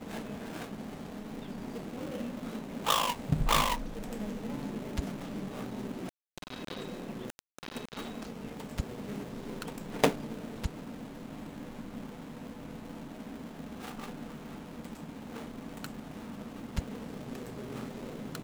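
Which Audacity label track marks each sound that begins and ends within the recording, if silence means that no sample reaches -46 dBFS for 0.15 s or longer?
6.380000	7.390000	sound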